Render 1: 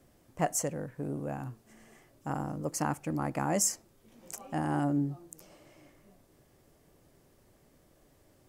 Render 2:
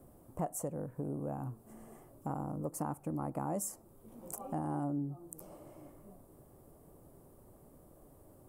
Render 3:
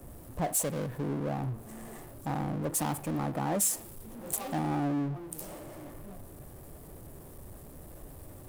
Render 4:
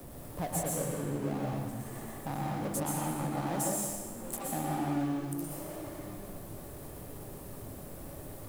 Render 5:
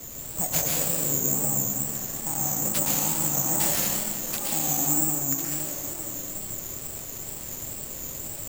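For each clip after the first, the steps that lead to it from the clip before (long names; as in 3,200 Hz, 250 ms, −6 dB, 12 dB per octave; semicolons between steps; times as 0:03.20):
flat-topped bell 3,300 Hz −15.5 dB 2.4 octaves; downward compressor 2.5 to 1, threshold −44 dBFS, peak gain reduction 13.5 dB; level +5 dB
parametric band 1,800 Hz +8.5 dB 0.24 octaves; power curve on the samples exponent 0.5; multiband upward and downward expander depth 70%
bit-depth reduction 10 bits, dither none; dense smooth reverb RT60 1.2 s, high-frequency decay 0.8×, pre-delay 105 ms, DRR −2.5 dB; multiband upward and downward compressor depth 40%; level −5.5 dB
dense smooth reverb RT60 2.3 s, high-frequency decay 0.85×, pre-delay 115 ms, DRR 5.5 dB; bad sample-rate conversion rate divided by 6×, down none, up zero stuff; tape wow and flutter 79 cents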